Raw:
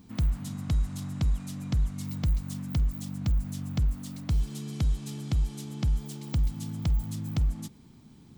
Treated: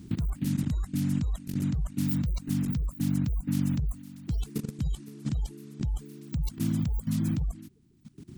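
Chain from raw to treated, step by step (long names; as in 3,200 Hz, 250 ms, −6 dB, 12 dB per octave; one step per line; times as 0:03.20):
spectral magnitudes quantised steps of 30 dB
reverb reduction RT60 1.2 s
parametric band 140 Hz +8 dB 1.5 octaves
output level in coarse steps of 18 dB
level +9 dB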